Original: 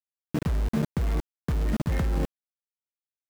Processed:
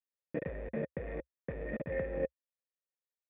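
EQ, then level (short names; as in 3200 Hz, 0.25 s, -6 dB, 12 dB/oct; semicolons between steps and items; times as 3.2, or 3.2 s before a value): vocal tract filter e; bell 67 Hz -6.5 dB 0.34 oct; low shelf 110 Hz -5.5 dB; +7.0 dB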